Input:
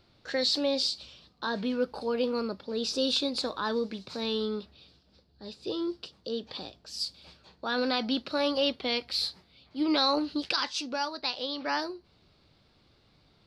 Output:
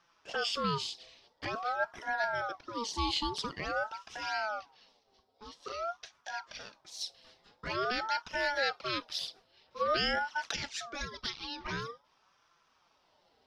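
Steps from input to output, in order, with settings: envelope flanger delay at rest 6.2 ms, full sweep at -26 dBFS; ring modulator with a swept carrier 890 Hz, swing 35%, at 0.48 Hz

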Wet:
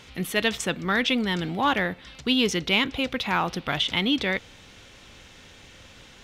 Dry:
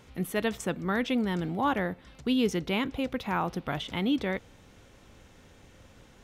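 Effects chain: in parallel at -10 dB: soft clip -27.5 dBFS, distortion -10 dB; on the sum: bell 3500 Hz +11.5 dB 2.4 oct

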